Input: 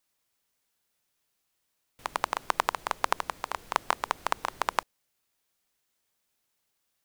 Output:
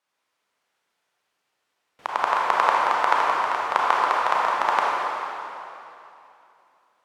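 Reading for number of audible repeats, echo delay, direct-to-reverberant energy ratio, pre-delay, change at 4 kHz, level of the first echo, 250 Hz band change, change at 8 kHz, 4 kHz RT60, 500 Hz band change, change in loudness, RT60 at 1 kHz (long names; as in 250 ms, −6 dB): no echo audible, no echo audible, −4.5 dB, 28 ms, +4.5 dB, no echo audible, +5.5 dB, can't be measured, 2.7 s, +9.5 dB, +9.5 dB, 2.8 s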